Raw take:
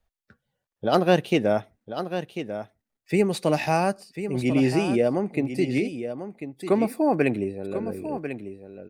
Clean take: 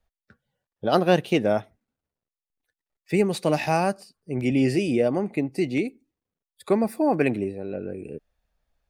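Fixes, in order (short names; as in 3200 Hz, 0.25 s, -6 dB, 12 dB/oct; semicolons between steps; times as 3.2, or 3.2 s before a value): clip repair -7 dBFS; inverse comb 1.044 s -10 dB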